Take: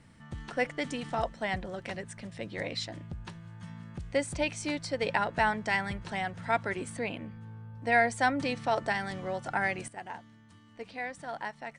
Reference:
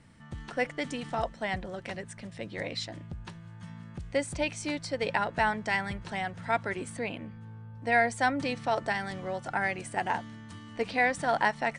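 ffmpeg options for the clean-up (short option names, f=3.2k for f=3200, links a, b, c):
-af "asetnsamples=n=441:p=0,asendcmd='9.88 volume volume 11.5dB',volume=0dB"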